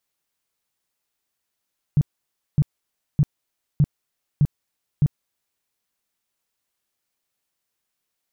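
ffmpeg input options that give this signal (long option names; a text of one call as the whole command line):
ffmpeg -f lavfi -i "aevalsrc='0.251*sin(2*PI*146*mod(t,0.61))*lt(mod(t,0.61),6/146)':duration=3.66:sample_rate=44100" out.wav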